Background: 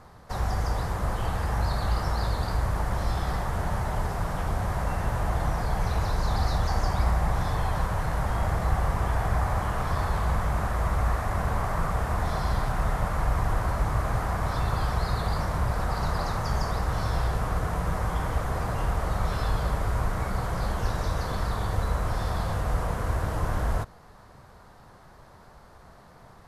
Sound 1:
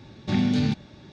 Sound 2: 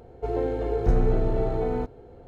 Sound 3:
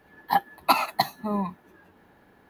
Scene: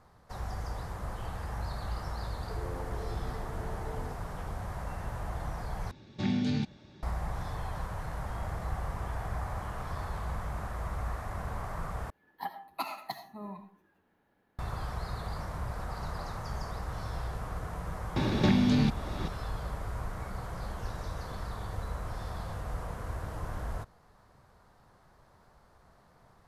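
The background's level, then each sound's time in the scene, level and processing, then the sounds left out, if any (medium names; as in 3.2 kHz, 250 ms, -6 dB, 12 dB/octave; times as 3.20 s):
background -10 dB
2.28 s: add 2 -6 dB + compression 3:1, threshold -36 dBFS
5.91 s: replace with 1 -7 dB
12.10 s: replace with 3 -15.5 dB + algorithmic reverb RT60 0.46 s, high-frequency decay 0.55×, pre-delay 35 ms, DRR 8.5 dB
18.16 s: add 1 -2 dB + three bands compressed up and down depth 100%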